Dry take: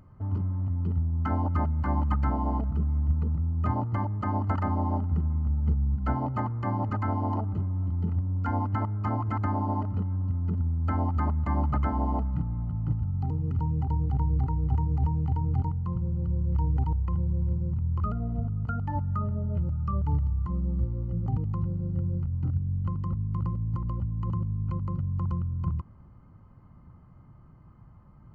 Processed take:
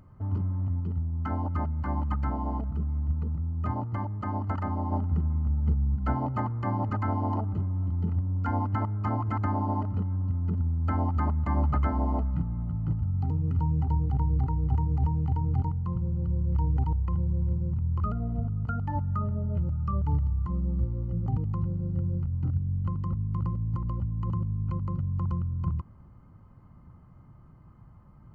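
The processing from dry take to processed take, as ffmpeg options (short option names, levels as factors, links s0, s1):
-filter_complex "[0:a]asettb=1/sr,asplit=3[s0][s1][s2];[s0]atrim=end=11.554[s3];[s1]atrim=start=11.55:end=13.99,asetpts=PTS-STARTPTS,afade=t=in:d=0.004:c=qsin,afade=t=out:st=2.436:d=0.004:c=qsin,asplit=2[s4][s5];[s5]adelay=12,volume=0.282[s6];[s4][s6]amix=inputs=2:normalize=0,atrim=end_sample=107604[s7];[s2]atrim=start=13.986[s8];[s3][s7]acrossfade=d=0.004:c1=hsin:c2=qsin[s9];[s9][s8]acrossfade=d=0.004:c1=qsin:c2=hsin,asplit=3[s10][s11][s12];[s10]atrim=end=0.802[s13];[s11]atrim=start=0.798:end=4.922,asetpts=PTS-STARTPTS,volume=0.708[s14];[s12]atrim=start=4.918[s15];[s13][s14]acrossfade=d=0.004:c1=hsin:c2=hsin[s16];[s16][s15]acrossfade=d=0.004:c1=hsin:c2=hsin"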